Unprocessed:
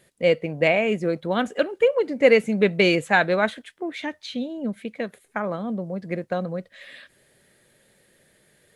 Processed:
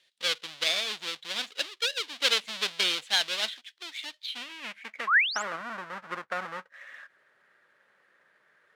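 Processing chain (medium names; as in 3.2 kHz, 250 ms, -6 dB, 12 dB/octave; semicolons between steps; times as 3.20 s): square wave that keeps the level; painted sound rise, 5.07–5.43 s, 1–8.1 kHz -18 dBFS; band-pass sweep 3.6 kHz -> 1.4 kHz, 4.21–5.45 s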